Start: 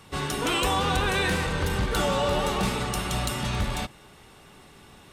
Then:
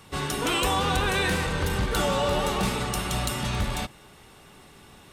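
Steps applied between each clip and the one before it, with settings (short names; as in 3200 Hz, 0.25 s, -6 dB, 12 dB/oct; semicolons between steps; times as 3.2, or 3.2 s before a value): high shelf 9800 Hz +3.5 dB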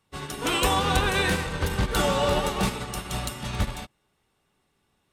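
upward expander 2.5:1, over -39 dBFS; gain +4 dB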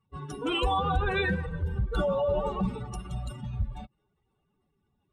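spectral contrast raised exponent 2.3; gain -3 dB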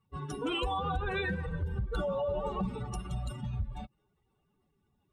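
compressor 4:1, threshold -30 dBFS, peak gain reduction 8 dB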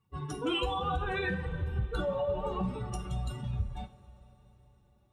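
two-slope reverb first 0.29 s, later 4.7 s, from -22 dB, DRR 6 dB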